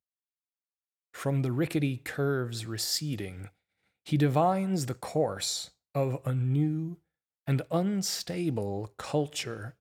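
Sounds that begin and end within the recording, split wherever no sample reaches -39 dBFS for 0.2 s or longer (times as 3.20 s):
1.15–3.47 s
4.07–5.66 s
5.95–6.94 s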